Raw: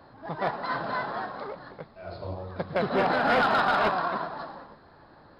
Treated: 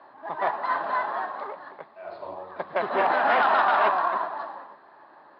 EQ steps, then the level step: cabinet simulation 200–5100 Hz, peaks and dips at 490 Hz -10 dB, 730 Hz -4 dB, 1.4 kHz -8 dB, 2.2 kHz -4 dB; three-band isolator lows -19 dB, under 450 Hz, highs -20 dB, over 2.5 kHz; +8.5 dB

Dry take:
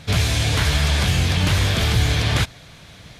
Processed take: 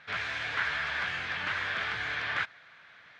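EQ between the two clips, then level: band-pass filter 1.6 kHz, Q 2.5; distance through air 82 m; 0.0 dB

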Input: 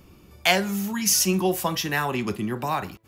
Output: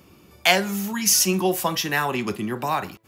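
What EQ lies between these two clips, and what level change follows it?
high-pass 74 Hz; bass shelf 210 Hz -5 dB; +2.5 dB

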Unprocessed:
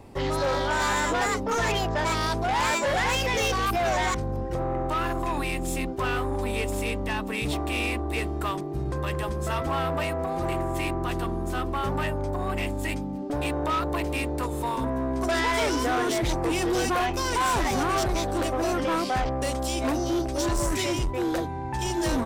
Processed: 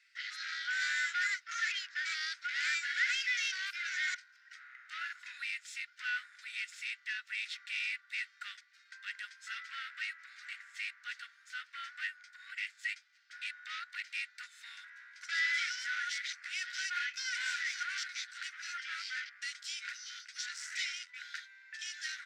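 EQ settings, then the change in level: rippled Chebyshev high-pass 1.4 kHz, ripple 6 dB; distance through air 150 m; treble shelf 11 kHz +8 dB; +1.0 dB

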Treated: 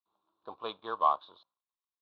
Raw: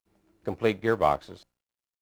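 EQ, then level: dynamic bell 2.7 kHz, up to +4 dB, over -46 dBFS, Q 1.3; two resonant band-passes 2 kHz, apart 1.8 oct; distance through air 310 m; +7.0 dB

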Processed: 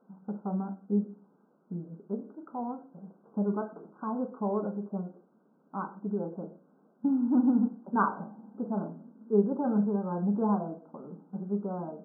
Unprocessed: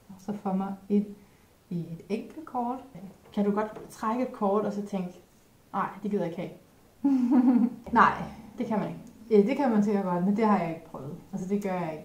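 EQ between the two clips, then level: brick-wall FIR band-pass 160–1600 Hz; bass shelf 370 Hz +8 dB; -8.0 dB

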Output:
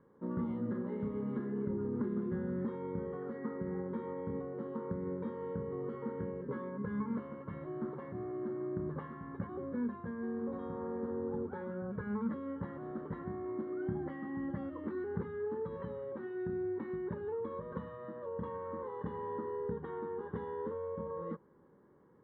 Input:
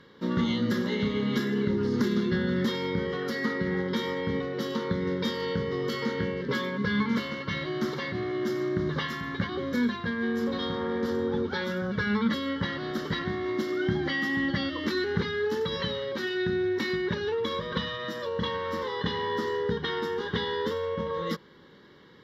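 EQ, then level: four-pole ladder low-pass 1.3 kHz, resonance 20%; -4.5 dB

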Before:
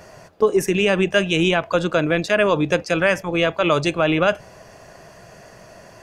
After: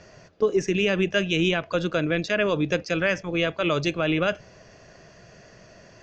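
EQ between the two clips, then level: steep low-pass 6.7 kHz 48 dB/octave; peaking EQ 880 Hz -8 dB 0.96 oct; -3.5 dB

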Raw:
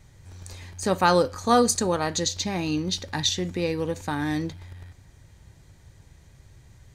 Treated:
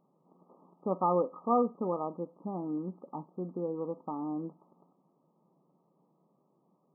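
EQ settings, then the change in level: brick-wall FIR band-pass 160–1300 Hz; -7.5 dB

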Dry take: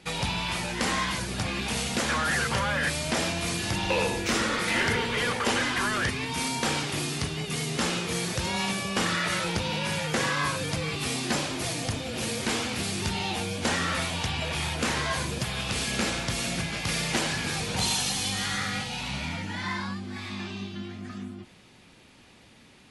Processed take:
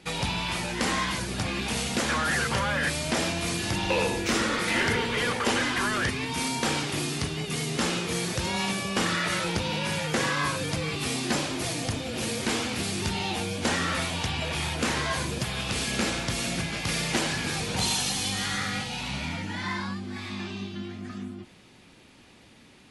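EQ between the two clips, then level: peaking EQ 310 Hz +2.5 dB 0.82 oct; 0.0 dB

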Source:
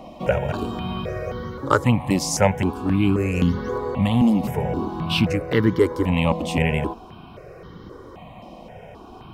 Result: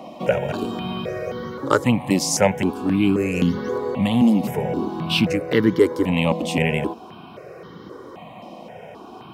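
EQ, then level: high-pass 170 Hz 12 dB/octave; dynamic bell 1.1 kHz, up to -5 dB, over -37 dBFS, Q 1.1; +3.0 dB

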